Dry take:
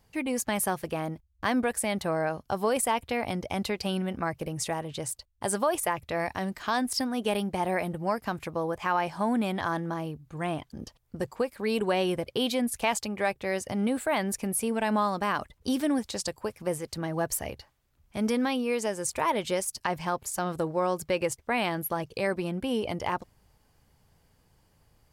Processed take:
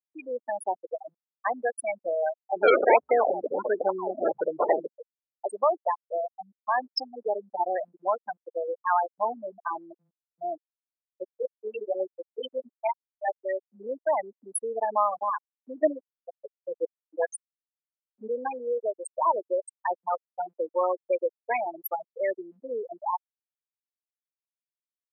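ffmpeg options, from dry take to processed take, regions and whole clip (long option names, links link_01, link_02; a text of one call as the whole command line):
ffmpeg -i in.wav -filter_complex "[0:a]asettb=1/sr,asplit=3[link_01][link_02][link_03];[link_01]atrim=end=2.564[link_04];[link_02]atrim=start=2.56:end=4.87,asetpts=PTS-STARTPTS,afade=type=in:duration=0.004:curve=qsin,afade=type=out:start_time=2.306:duration=0.004:curve=qsin,aeval=exprs='val(0)+0.5*0.0316*sgn(val(0))':channel_layout=same,acrusher=samples=33:mix=1:aa=0.000001:lfo=1:lforange=33:lforate=1.4,acontrast=45[link_05];[link_03]atrim=start=4.866[link_06];[link_04][link_05]acrossfade=duration=0.004:curve1=hsin:curve2=qsin[link_07];[link_07][link_06]acrossfade=duration=0.004:curve1=qsin:curve2=hsin,asettb=1/sr,asplit=3[link_08][link_09][link_10];[link_08]atrim=end=10.604[link_11];[link_09]atrim=start=10.6:end=13.28,asetpts=PTS-STARTPTS,afade=type=in:duration=0.004:curve=qsin,afade=type=out:start_time=2.676:duration=0.004:curve=qsin,flanger=delay=15:depth=4.2:speed=1.3,acrusher=bits=6:dc=4:mix=0:aa=0.000001[link_12];[link_10]atrim=start=13.276[link_13];[link_11][link_12]acrossfade=duration=0.004:curve1=hsin:curve2=qsin[link_14];[link_14][link_13]acrossfade=duration=0.004:curve1=qsin:curve2=hsin,asettb=1/sr,asplit=3[link_15][link_16][link_17];[link_15]atrim=end=15.824[link_18];[link_16]atrim=start=15.82:end=18.3,asetpts=PTS-STARTPTS,afade=type=in:duration=0.004:curve=qsin,afade=type=out:start_time=2.476:duration=0.004:curve=qsin,aphaser=in_gain=1:out_gain=1:delay=4.4:decay=0.63:speed=1:type=sinusoidal,aeval=exprs='val(0)*gte(abs(val(0)),0.0422)':channel_layout=same[link_19];[link_17]atrim=start=18.296[link_20];[link_18][link_19]acrossfade=duration=0.004:curve1=hsin:curve2=qsin[link_21];[link_21][link_20]acrossfade=duration=0.004:curve1=qsin:curve2=hsin,afftfilt=real='re*gte(hypot(re,im),0.178)':imag='im*gte(hypot(re,im),0.178)':win_size=1024:overlap=0.75,highpass=frequency=470:width=0.5412,highpass=frequency=470:width=1.3066,volume=4.5dB" out.wav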